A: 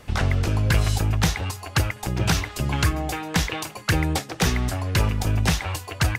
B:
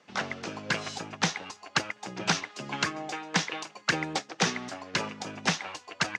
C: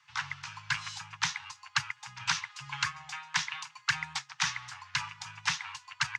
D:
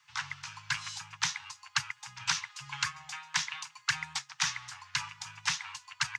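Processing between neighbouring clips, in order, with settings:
Chebyshev band-pass filter 180–6,400 Hz, order 3; low-shelf EQ 340 Hz −5.5 dB; expander for the loud parts 1.5 to 1, over −42 dBFS
Chebyshev band-stop filter 140–920 Hz, order 4; level −1.5 dB
high-shelf EQ 6,100 Hz +9.5 dB; level −2.5 dB

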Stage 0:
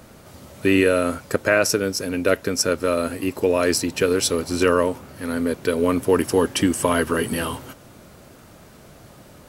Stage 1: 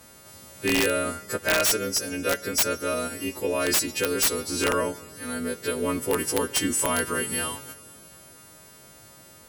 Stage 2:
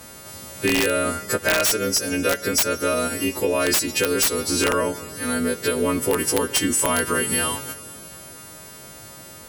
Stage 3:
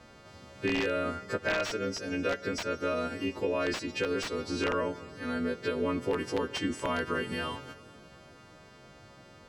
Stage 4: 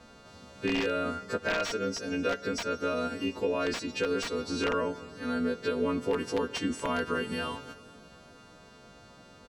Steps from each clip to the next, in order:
every partial snapped to a pitch grid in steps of 2 semitones; four-comb reverb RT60 3.4 s, combs from 31 ms, DRR 18 dB; wrap-around overflow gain 7.5 dB; level −6.5 dB
downward compressor 3 to 1, threshold −27 dBFS, peak gain reduction 7 dB; level +8.5 dB
high-frequency loss of the air 170 metres; level −8 dB
comb filter 4.3 ms, depth 35%

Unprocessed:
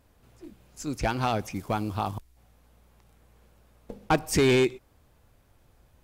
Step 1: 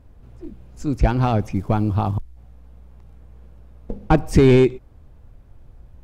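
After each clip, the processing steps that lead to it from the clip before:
spectral tilt −3 dB per octave
level +3.5 dB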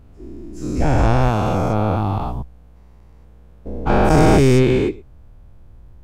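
every bin's largest magnitude spread in time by 480 ms
level −5 dB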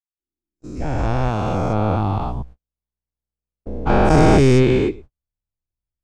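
fade in at the beginning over 1.95 s
low-pass filter 8,000 Hz 12 dB per octave
noise gate −35 dBFS, range −45 dB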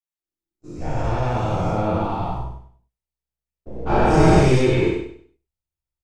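on a send: repeating echo 98 ms, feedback 29%, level −6 dB
on the sum: reverb whose tail is shaped and stops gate 90 ms flat, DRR −5.5 dB
level −8.5 dB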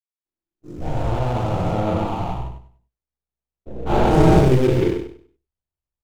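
running median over 25 samples
in parallel at −11 dB: dead-zone distortion −37.5 dBFS
on the sum: level −1 dB

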